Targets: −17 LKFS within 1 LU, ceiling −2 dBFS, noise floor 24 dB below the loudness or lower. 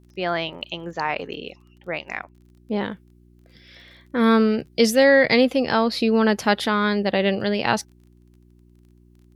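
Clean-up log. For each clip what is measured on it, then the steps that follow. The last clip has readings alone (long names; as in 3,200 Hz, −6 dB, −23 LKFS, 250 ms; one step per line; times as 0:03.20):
crackle rate 24 per second; mains hum 60 Hz; hum harmonics up to 360 Hz; level of the hum −51 dBFS; integrated loudness −21.0 LKFS; sample peak −4.5 dBFS; target loudness −17.0 LKFS
→ click removal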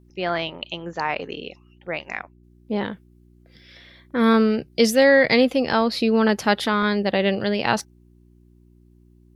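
crackle rate 0.11 per second; mains hum 60 Hz; hum harmonics up to 180 Hz; level of the hum −51 dBFS
→ hum removal 60 Hz, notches 3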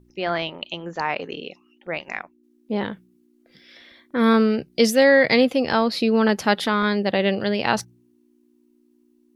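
mains hum none found; integrated loudness −21.0 LKFS; sample peak −4.5 dBFS; target loudness −17.0 LKFS
→ level +4 dB
brickwall limiter −2 dBFS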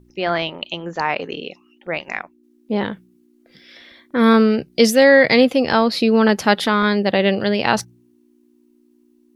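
integrated loudness −17.0 LKFS; sample peak −2.0 dBFS; background noise floor −57 dBFS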